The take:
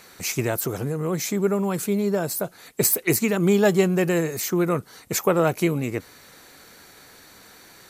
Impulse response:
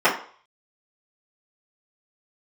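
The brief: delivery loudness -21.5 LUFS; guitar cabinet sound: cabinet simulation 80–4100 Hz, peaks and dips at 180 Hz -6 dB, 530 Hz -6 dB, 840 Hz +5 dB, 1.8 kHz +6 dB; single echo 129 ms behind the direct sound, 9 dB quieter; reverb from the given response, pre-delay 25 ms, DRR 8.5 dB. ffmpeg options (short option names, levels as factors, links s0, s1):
-filter_complex "[0:a]aecho=1:1:129:0.355,asplit=2[s0][s1];[1:a]atrim=start_sample=2205,adelay=25[s2];[s1][s2]afir=irnorm=-1:irlink=0,volume=0.0316[s3];[s0][s3]amix=inputs=2:normalize=0,highpass=80,equalizer=f=180:t=q:w=4:g=-6,equalizer=f=530:t=q:w=4:g=-6,equalizer=f=840:t=q:w=4:g=5,equalizer=f=1800:t=q:w=4:g=6,lowpass=f=4100:w=0.5412,lowpass=f=4100:w=1.3066,volume=1.33"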